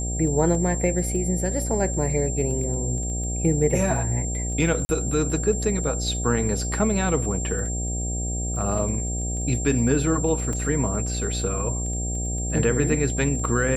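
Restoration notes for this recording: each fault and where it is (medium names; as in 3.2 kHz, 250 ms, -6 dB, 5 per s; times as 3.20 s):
buzz 60 Hz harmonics 13 -28 dBFS
crackle 12 per s -33 dBFS
whine 7.4 kHz -30 dBFS
0.55 s: dropout 2.1 ms
4.85–4.89 s: dropout 40 ms
10.53 s: dropout 2.7 ms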